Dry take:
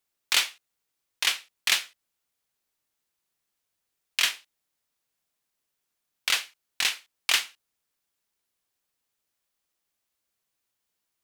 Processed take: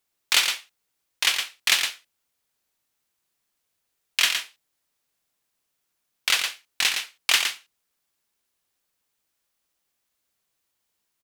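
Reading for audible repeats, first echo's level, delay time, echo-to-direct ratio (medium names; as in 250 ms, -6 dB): 1, -6.5 dB, 114 ms, -6.5 dB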